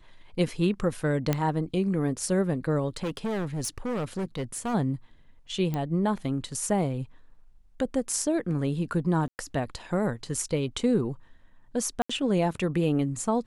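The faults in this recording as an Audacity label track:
1.330000	1.330000	pop -11 dBFS
2.960000	4.750000	clipped -26.5 dBFS
5.740000	5.740000	pop -18 dBFS
9.280000	9.390000	dropout 109 ms
12.020000	12.100000	dropout 75 ms

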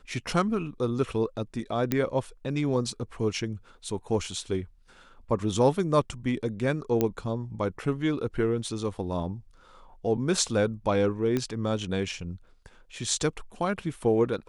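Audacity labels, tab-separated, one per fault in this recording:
1.920000	1.920000	pop -11 dBFS
7.010000	7.010000	pop -12 dBFS
11.370000	11.370000	pop -15 dBFS

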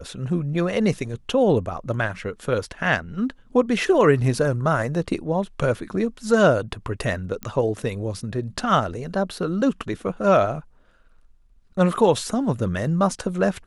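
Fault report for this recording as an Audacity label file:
7.430000	7.430000	pop -16 dBFS

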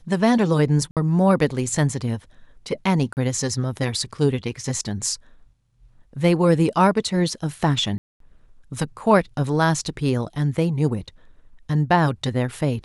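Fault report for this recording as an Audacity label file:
0.910000	0.970000	dropout 57 ms
3.130000	3.170000	dropout 39 ms
7.980000	8.200000	dropout 223 ms

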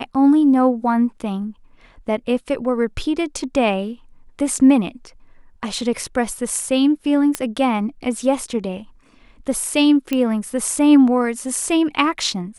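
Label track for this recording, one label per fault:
7.350000	7.350000	pop -5 dBFS
10.130000	10.130000	pop -8 dBFS

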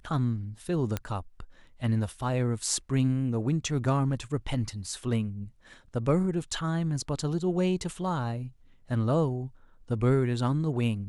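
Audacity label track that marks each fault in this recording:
0.970000	0.970000	pop -15 dBFS

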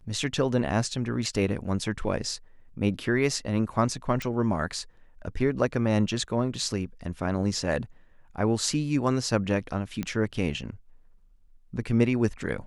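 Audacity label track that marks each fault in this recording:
4.220000	4.220000	pop -17 dBFS
10.030000	10.030000	pop -17 dBFS

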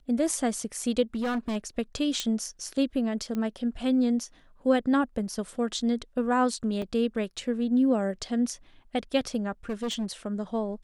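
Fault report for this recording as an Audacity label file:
1.150000	1.570000	clipped -25 dBFS
2.200000	2.200000	pop -13 dBFS
3.350000	3.350000	pop -21 dBFS
6.820000	6.820000	dropout 2.7 ms
9.690000	10.110000	clipped -26.5 dBFS

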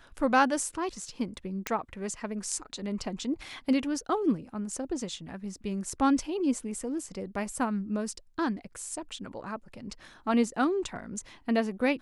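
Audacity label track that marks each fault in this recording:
1.670000	1.670000	pop -13 dBFS

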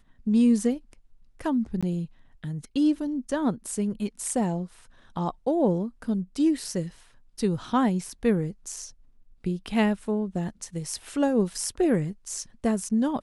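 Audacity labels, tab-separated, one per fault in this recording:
1.810000	1.830000	dropout 16 ms

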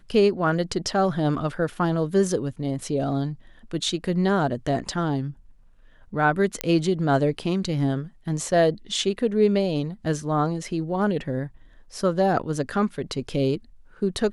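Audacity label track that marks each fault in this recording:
6.610000	6.610000	pop -7 dBFS

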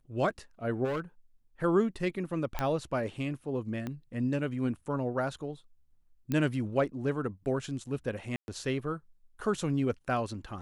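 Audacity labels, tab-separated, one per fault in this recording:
0.840000	1.000000	clipped -29 dBFS
2.590000	2.590000	pop -17 dBFS
3.870000	3.870000	pop -23 dBFS
6.320000	6.320000	pop -18 dBFS
8.360000	8.480000	dropout 121 ms

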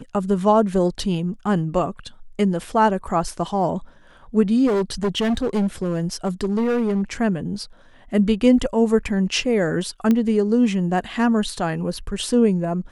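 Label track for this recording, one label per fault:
4.660000	7.020000	clipped -17 dBFS
10.110000	10.110000	pop -9 dBFS

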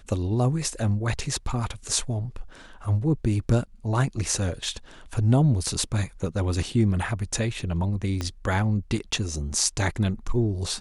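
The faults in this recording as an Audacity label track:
8.210000	8.210000	pop -15 dBFS

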